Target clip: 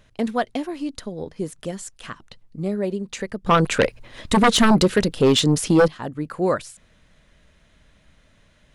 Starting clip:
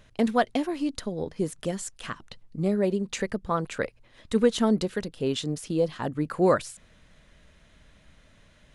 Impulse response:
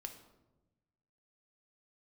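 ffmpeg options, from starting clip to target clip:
-filter_complex "[0:a]asettb=1/sr,asplit=3[link_01][link_02][link_03];[link_01]atrim=end=3.464[link_04];[link_02]atrim=start=3.46:end=5.88,asetpts=PTS-STARTPTS,afade=type=in:duration=0.004:curve=qsin,afade=type=out:start_time=2.416:duration=0.004:curve=qsin,aeval=exprs='0.316*sin(PI/2*3.16*val(0)/0.316)':channel_layout=same[link_05];[link_03]atrim=start=5.876[link_06];[link_04][link_05]acrossfade=duration=0.004:curve1=hsin:curve2=qsin[link_07];[link_07][link_06]acrossfade=duration=0.004:curve1=qsin:curve2=hsin"

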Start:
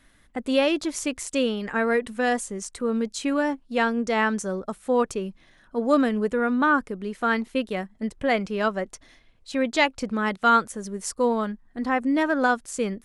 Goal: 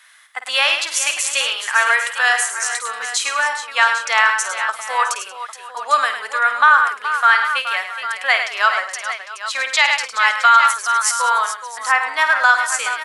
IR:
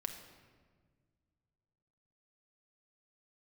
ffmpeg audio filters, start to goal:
-af "highpass=frequency=1000:width=0.5412,highpass=frequency=1000:width=1.3066,aecho=1:1:52|105|184|423|662|802:0.299|0.355|0.119|0.266|0.119|0.237,alimiter=level_in=14dB:limit=-1dB:release=50:level=0:latency=1,volume=-1dB"

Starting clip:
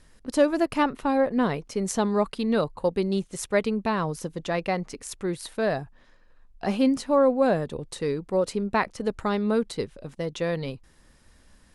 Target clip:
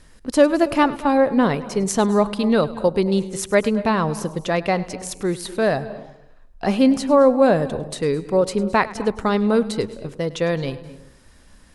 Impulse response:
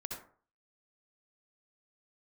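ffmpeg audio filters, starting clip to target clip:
-filter_complex "[0:a]asplit=2[link_01][link_02];[1:a]atrim=start_sample=2205,asetrate=26019,aresample=44100,adelay=103[link_03];[link_02][link_03]afir=irnorm=-1:irlink=0,volume=-17dB[link_04];[link_01][link_04]amix=inputs=2:normalize=0,volume=6dB"

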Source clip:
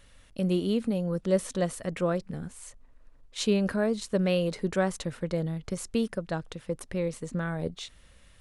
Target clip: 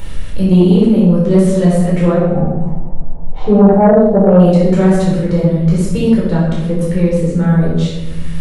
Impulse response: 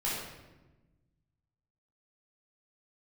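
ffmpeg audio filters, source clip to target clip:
-filter_complex "[0:a]asettb=1/sr,asplit=3[link_01][link_02][link_03];[link_01]atrim=end=2.144[link_04];[link_02]atrim=start=2.14:end=4.4,asetpts=PTS-STARTPTS,afade=type=in:duration=0.004:curve=qsin,afade=type=out:start_time=2.256:duration=0.004:curve=qsin,lowpass=frequency=780:width_type=q:width=7.4[link_05];[link_03]atrim=start=4.396[link_06];[link_04][link_05]acrossfade=duration=0.004:curve1=hsin:curve2=qsin[link_07];[link_07][link_06]acrossfade=duration=0.004:curve1=qsin:curve2=hsin,acompressor=mode=upward:threshold=-31dB:ratio=2.5,lowshelf=frequency=370:gain=9.5[link_08];[1:a]atrim=start_sample=2205[link_09];[link_08][link_09]afir=irnorm=-1:irlink=0,aeval=exprs='2*sin(PI/2*2.51*val(0)/2)':channel_layout=same,volume=-7.5dB"

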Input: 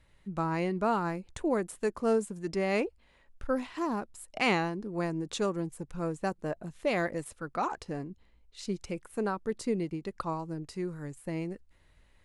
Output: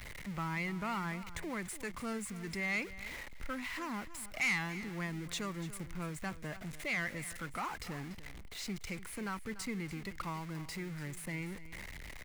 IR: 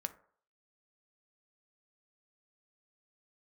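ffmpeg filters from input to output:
-filter_complex "[0:a]aeval=exprs='val(0)+0.5*0.0119*sgn(val(0))':channel_layout=same,equalizer=frequency=2100:width_type=o:width=0.35:gain=10,acrossover=split=230|950[link_01][link_02][link_03];[link_02]acompressor=threshold=-46dB:ratio=6[link_04];[link_01][link_04][link_03]amix=inputs=3:normalize=0,asoftclip=type=tanh:threshold=-23dB,asplit=2[link_05][link_06];[link_06]aecho=0:1:290:0.178[link_07];[link_05][link_07]amix=inputs=2:normalize=0,volume=-4dB"

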